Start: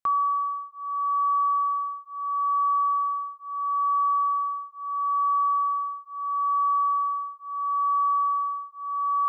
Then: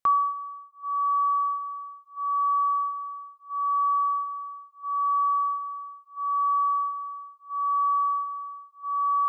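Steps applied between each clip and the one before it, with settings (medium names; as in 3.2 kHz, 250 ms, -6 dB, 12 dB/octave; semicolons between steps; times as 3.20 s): reverb removal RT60 1.7 s; trim +3 dB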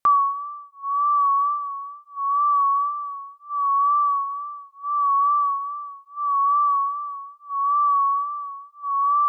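wow and flutter 44 cents; trim +4.5 dB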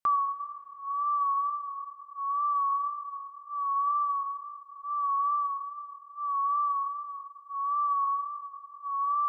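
Schroeder reverb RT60 3.7 s, combs from 26 ms, DRR 14.5 dB; trim -8.5 dB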